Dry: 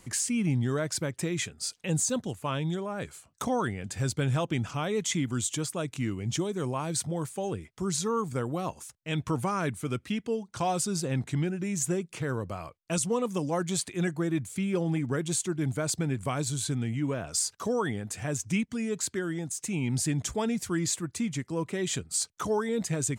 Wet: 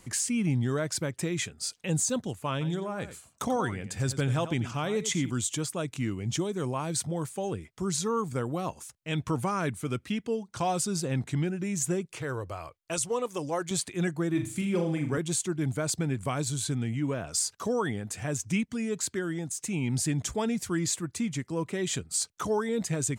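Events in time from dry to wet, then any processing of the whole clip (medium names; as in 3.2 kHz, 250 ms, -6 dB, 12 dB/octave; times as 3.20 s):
2.52–5.30 s: delay 90 ms -12.5 dB
12.05–13.71 s: peaking EQ 200 Hz -15 dB 0.58 oct
14.30–15.18 s: flutter echo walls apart 6.8 m, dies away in 0.38 s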